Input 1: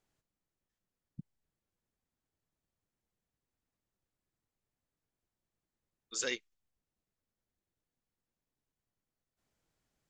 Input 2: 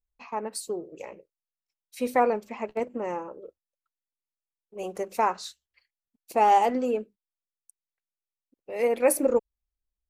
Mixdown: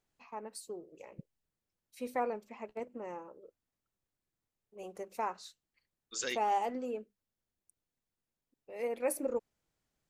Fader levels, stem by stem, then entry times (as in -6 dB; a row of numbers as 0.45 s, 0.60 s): -1.5 dB, -11.5 dB; 0.00 s, 0.00 s